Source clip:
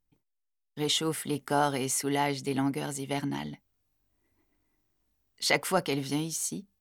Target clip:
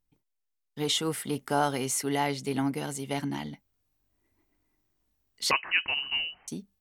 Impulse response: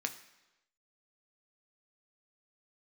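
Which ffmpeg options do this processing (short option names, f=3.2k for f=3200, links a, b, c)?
-filter_complex "[0:a]asettb=1/sr,asplit=3[a][b][c];[a]atrim=end=5.514[d];[b]atrim=start=5.51:end=6.48,asetpts=PTS-STARTPTS,afade=t=in:d=0.004:c=qsin,afade=t=out:st=0.966:d=0.004:c=qsin,lowpass=f=2.6k:t=q:w=0.5098,lowpass=f=2.6k:t=q:w=0.6013,lowpass=f=2.6k:t=q:w=0.9,lowpass=f=2.6k:t=q:w=2.563,afreqshift=-3100[e];[c]atrim=start=6.476[f];[d][e]acrossfade=d=0.004:c1=hsin:c2=qsin[g];[g][f]acrossfade=d=0.004:c1=qsin:c2=hsin"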